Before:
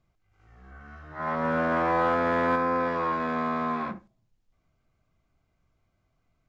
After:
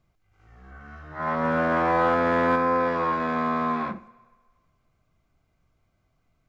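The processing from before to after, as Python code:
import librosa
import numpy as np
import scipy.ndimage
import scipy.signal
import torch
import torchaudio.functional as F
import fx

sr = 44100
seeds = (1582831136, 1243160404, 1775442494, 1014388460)

y = fx.rev_fdn(x, sr, rt60_s=1.6, lf_ratio=0.7, hf_ratio=0.95, size_ms=39.0, drr_db=19.0)
y = y * 10.0 ** (2.5 / 20.0)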